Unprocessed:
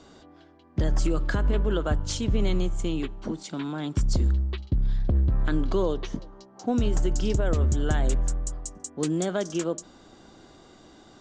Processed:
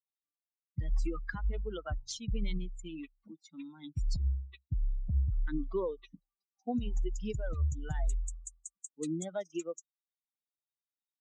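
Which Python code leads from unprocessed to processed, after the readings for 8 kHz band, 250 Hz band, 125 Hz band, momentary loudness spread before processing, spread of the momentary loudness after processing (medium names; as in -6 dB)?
-10.0 dB, -11.0 dB, -10.0 dB, 9 LU, 13 LU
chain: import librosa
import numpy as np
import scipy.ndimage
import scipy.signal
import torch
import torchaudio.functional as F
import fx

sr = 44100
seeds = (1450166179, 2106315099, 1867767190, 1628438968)

y = fx.bin_expand(x, sr, power=3.0)
y = F.gain(torch.from_numpy(y), -4.0).numpy()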